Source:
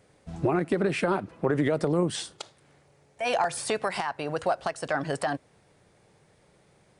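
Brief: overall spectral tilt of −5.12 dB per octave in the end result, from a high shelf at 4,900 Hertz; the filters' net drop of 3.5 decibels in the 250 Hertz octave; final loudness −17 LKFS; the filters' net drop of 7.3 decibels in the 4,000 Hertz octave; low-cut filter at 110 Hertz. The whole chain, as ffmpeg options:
ffmpeg -i in.wav -af "highpass=110,equalizer=frequency=250:width_type=o:gain=-5,equalizer=frequency=4000:width_type=o:gain=-6,highshelf=frequency=4900:gain=-8.5,volume=13dB" out.wav

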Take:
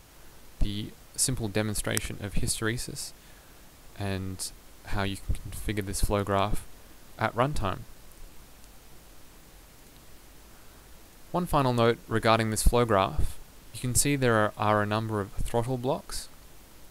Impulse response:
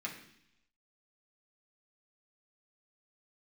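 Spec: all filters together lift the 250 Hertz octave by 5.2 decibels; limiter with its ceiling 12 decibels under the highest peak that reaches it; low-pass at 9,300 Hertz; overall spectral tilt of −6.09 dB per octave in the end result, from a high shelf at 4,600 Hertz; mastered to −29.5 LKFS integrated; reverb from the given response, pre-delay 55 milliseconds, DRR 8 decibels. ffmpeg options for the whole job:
-filter_complex "[0:a]lowpass=9300,equalizer=frequency=250:width_type=o:gain=6.5,highshelf=frequency=4600:gain=-8.5,alimiter=limit=-19.5dB:level=0:latency=1,asplit=2[link_01][link_02];[1:a]atrim=start_sample=2205,adelay=55[link_03];[link_02][link_03]afir=irnorm=-1:irlink=0,volume=-9.5dB[link_04];[link_01][link_04]amix=inputs=2:normalize=0,volume=2.5dB"

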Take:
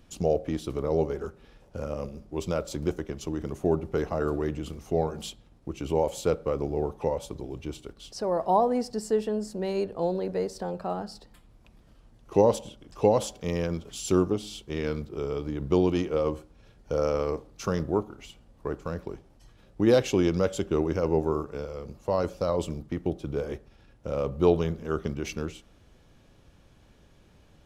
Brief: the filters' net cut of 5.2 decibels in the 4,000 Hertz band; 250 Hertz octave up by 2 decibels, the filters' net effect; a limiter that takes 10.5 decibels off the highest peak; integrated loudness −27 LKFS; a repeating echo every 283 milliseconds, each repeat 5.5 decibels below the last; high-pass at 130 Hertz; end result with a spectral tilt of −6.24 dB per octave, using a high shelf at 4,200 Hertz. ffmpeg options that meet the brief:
ffmpeg -i in.wav -af "highpass=130,equalizer=frequency=250:width_type=o:gain=3.5,equalizer=frequency=4000:width_type=o:gain=-5,highshelf=frequency=4200:gain=-3.5,alimiter=limit=-18dB:level=0:latency=1,aecho=1:1:283|566|849|1132|1415|1698|1981:0.531|0.281|0.149|0.079|0.0419|0.0222|0.0118,volume=3dB" out.wav

